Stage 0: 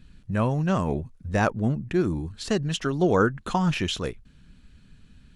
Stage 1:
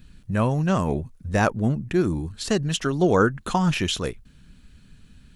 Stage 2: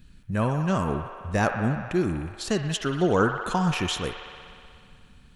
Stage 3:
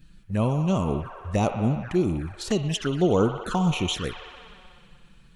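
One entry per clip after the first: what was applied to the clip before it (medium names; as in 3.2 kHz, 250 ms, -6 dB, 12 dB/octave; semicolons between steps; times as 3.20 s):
treble shelf 9.7 kHz +11 dB; trim +2 dB
feedback echo behind a band-pass 61 ms, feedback 84%, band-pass 1.4 kHz, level -7.5 dB; trim -3 dB
touch-sensitive flanger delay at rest 7.3 ms, full sweep at -23 dBFS; trim +2 dB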